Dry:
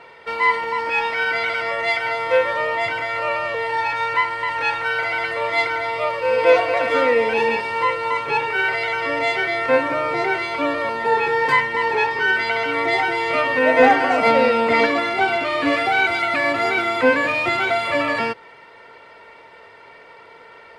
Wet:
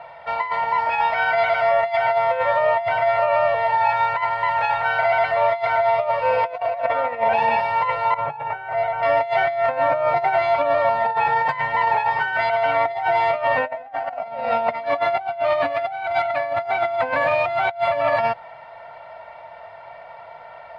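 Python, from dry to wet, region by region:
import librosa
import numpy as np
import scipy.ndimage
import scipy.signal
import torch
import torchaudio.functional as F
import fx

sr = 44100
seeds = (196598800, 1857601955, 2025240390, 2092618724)

y = fx.chain(x, sr, fx.lowpass(hz=1900.0, slope=6),
    fx.over_compress(threshold_db=-20.0, ratio=-0.5),
    fx.low_shelf(hz=440.0, db=-3.0), at=(6.85, 7.33))
y = fx.chain(y, sr, fx.lowpass(hz=1000.0, slope=6),
    fx.over_compress(threshold_db=-29.0, ratio=-0.5), at=(8.14, 9.03))
y = fx.curve_eq(y, sr, hz=(150.0, 260.0, 440.0, 660.0, 970.0, 4000.0, 7100.0), db=(0, -15, -22, 4, -7, -8, -17))
y = fx.over_compress(y, sr, threshold_db=-27.0, ratio=-0.5)
y = fx.peak_eq(y, sr, hz=730.0, db=9.0, octaves=2.0)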